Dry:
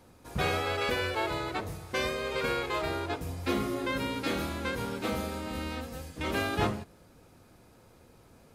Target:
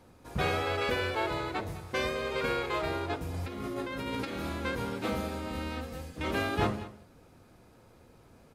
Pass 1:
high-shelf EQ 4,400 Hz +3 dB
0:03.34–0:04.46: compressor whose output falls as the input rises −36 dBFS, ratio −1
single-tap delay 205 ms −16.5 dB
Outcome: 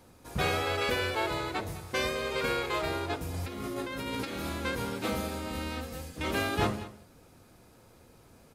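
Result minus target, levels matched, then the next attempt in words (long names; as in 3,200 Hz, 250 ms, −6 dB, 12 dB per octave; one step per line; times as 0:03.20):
8,000 Hz band +5.5 dB
high-shelf EQ 4,400 Hz −5 dB
0:03.34–0:04.46: compressor whose output falls as the input rises −36 dBFS, ratio −1
single-tap delay 205 ms −16.5 dB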